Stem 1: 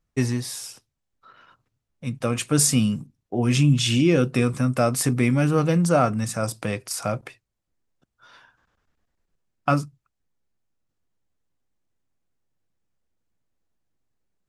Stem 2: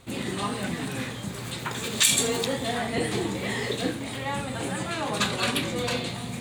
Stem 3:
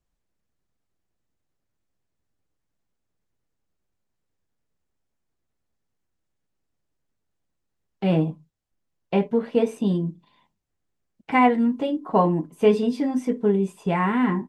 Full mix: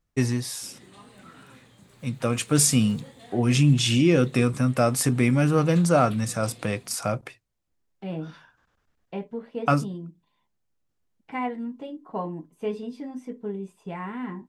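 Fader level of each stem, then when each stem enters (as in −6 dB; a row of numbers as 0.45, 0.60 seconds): −0.5, −20.0, −12.0 decibels; 0.00, 0.55, 0.00 seconds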